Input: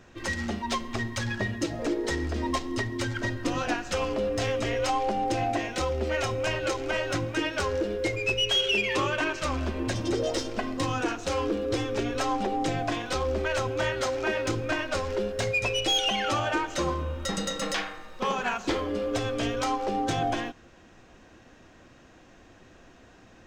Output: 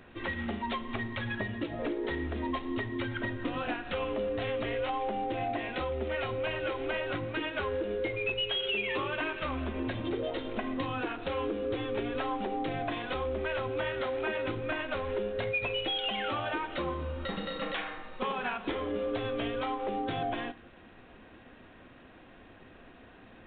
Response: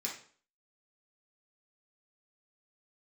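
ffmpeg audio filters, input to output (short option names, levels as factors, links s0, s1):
-filter_complex "[0:a]acompressor=threshold=0.0251:ratio=3,asplit=2[s0][s1];[1:a]atrim=start_sample=2205,highshelf=f=7300:g=2.5[s2];[s1][s2]afir=irnorm=-1:irlink=0,volume=0.224[s3];[s0][s3]amix=inputs=2:normalize=0" -ar 8000 -c:a adpcm_g726 -b:a 32k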